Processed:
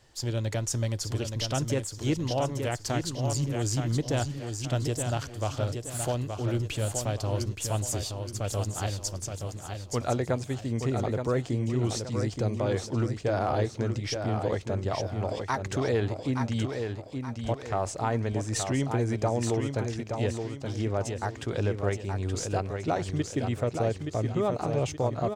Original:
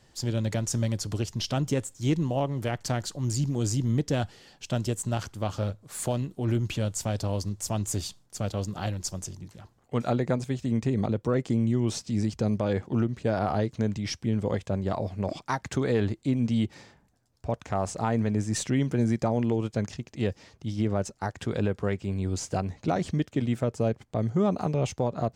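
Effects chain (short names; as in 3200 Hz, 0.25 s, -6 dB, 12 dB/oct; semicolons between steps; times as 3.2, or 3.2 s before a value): bell 200 Hz -10 dB 0.59 oct; on a send: feedback echo 0.873 s, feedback 39%, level -6 dB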